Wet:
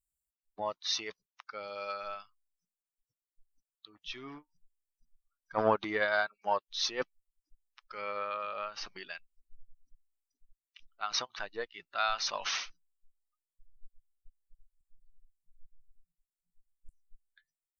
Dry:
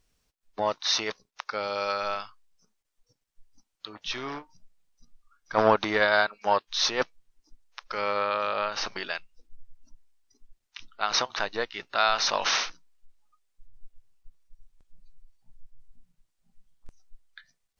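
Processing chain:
spectral dynamics exaggerated over time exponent 1.5
level −5 dB

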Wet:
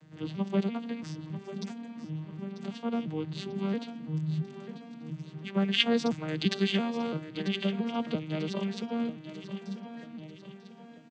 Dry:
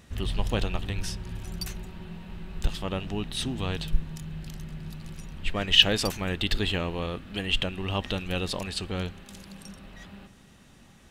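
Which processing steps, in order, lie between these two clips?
vocoder with an arpeggio as carrier major triad, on D#3, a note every 339 ms
0:06.28–0:07.29: high-shelf EQ 3,000 Hz +11.5 dB
repeating echo 942 ms, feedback 49%, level −12 dB

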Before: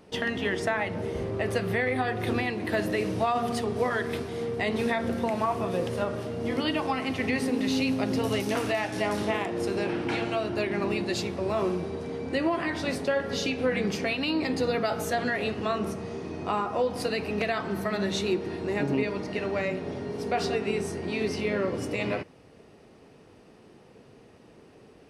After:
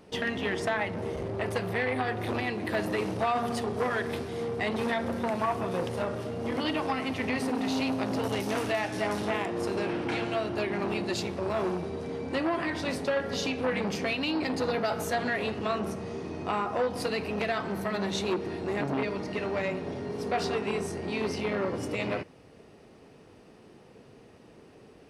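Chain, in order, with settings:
saturating transformer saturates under 990 Hz

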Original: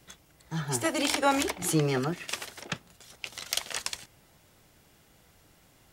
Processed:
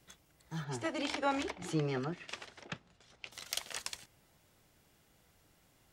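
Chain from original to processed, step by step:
0:00.64–0:03.32: high-frequency loss of the air 100 metres
level −7.5 dB

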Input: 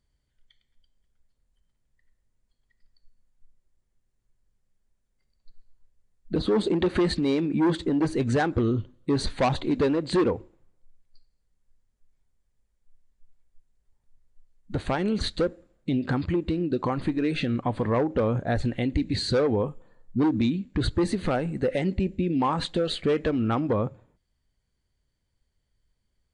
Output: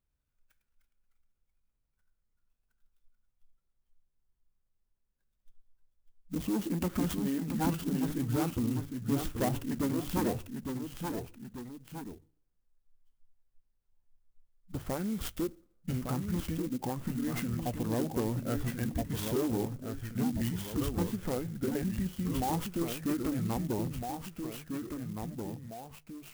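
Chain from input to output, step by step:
delay with pitch and tempo change per echo 273 ms, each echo −1 semitone, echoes 2, each echo −6 dB
mains-hum notches 50/100/150 Hz
formants moved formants −4 semitones
converter with an unsteady clock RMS 0.068 ms
level −8 dB

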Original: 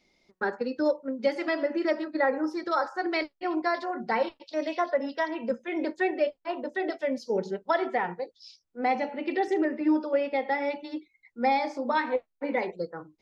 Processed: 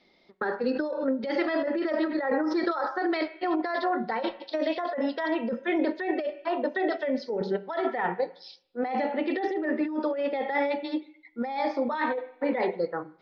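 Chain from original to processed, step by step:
spectral tilt +2 dB per octave
convolution reverb RT60 0.70 s, pre-delay 3 ms, DRR 16.5 dB
compressor whose output falls as the input rises −27 dBFS, ratio −1
low-pass filter 3,500 Hz 24 dB per octave
0:00.68–0:02.92: background raised ahead of every attack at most 62 dB per second

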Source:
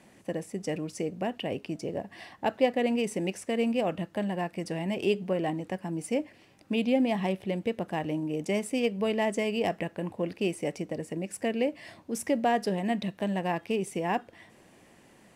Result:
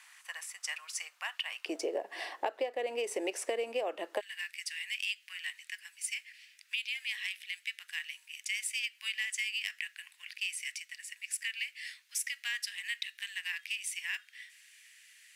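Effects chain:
Butterworth high-pass 1,100 Hz 36 dB per octave, from 0:01.65 370 Hz, from 0:04.19 1,800 Hz
downward compressor 20 to 1, threshold −36 dBFS, peak gain reduction 18.5 dB
level +6 dB

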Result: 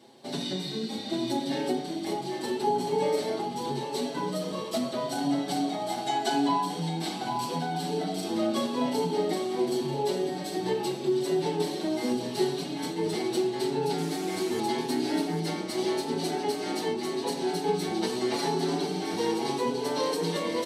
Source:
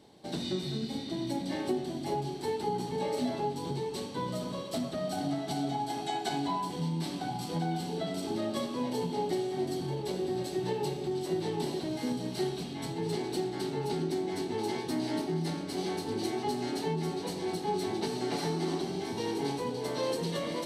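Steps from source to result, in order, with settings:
0:13.98–0:14.60: linear delta modulator 64 kbit/s, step −37.5 dBFS
high-pass filter 200 Hz 12 dB per octave
on a send: single-tap delay 799 ms −8 dB
on the sum: barber-pole flanger 5.7 ms +0.82 Hz
level +7.5 dB

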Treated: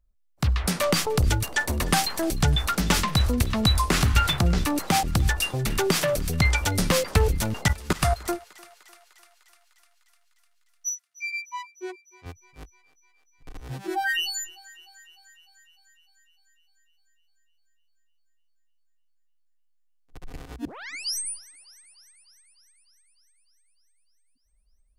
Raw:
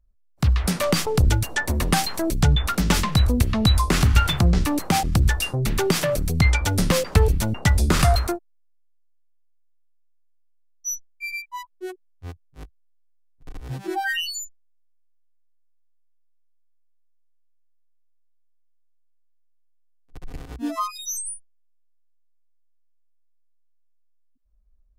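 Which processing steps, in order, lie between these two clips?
low-shelf EQ 360 Hz −4.5 dB
0:07.68–0:08.28: output level in coarse steps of 20 dB
0:10.89–0:12.26: band-pass filter 140–6,100 Hz
0:20.65: tape start 0.53 s
feedback echo with a high-pass in the loop 301 ms, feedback 71%, high-pass 610 Hz, level −20 dB

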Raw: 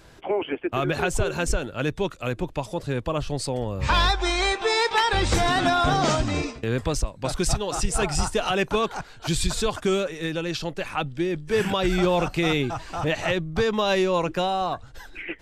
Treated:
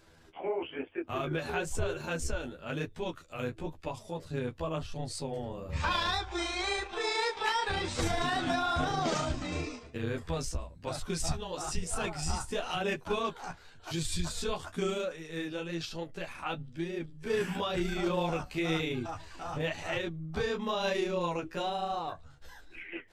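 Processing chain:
mains-hum notches 50/100 Hz
time stretch by overlap-add 1.5×, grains 73 ms
flanger 1 Hz, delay 7.8 ms, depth 8.8 ms, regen −20%
level −4.5 dB

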